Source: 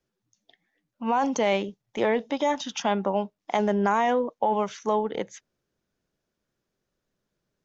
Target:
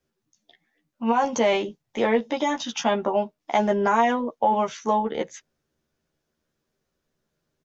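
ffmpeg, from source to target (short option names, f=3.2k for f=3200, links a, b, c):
-filter_complex "[0:a]asplit=2[a][b];[b]adelay=13,volume=-3dB[c];[a][c]amix=inputs=2:normalize=0,volume=1dB"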